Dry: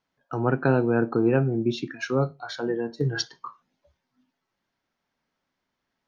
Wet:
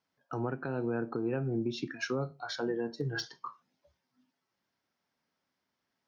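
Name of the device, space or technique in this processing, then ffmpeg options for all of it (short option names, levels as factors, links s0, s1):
broadcast voice chain: -af "highpass=79,deesser=0.75,acompressor=threshold=0.0631:ratio=4,equalizer=f=5200:t=o:w=0.31:g=5.5,alimiter=limit=0.106:level=0:latency=1:release=198,volume=0.668"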